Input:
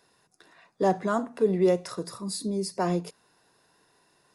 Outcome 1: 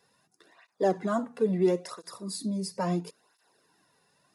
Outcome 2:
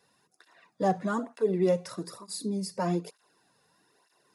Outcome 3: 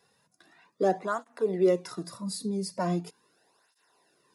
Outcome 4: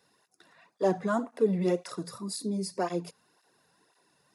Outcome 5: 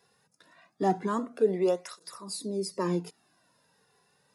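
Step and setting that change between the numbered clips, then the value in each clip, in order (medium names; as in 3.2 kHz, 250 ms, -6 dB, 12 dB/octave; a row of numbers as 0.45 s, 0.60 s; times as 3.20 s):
cancelling through-zero flanger, nulls at: 0.74 Hz, 1.1 Hz, 0.4 Hz, 1.9 Hz, 0.25 Hz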